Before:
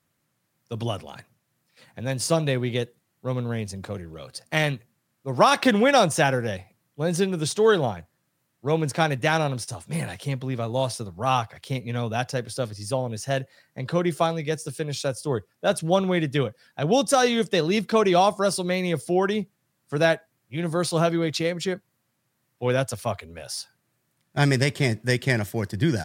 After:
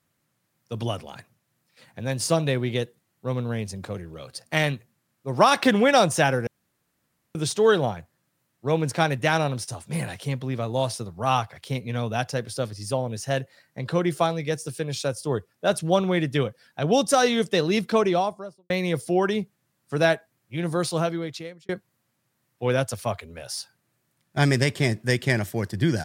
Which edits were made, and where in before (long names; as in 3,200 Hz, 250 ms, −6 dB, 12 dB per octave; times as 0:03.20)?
0:06.47–0:07.35: fill with room tone
0:17.84–0:18.70: fade out and dull
0:20.74–0:21.69: fade out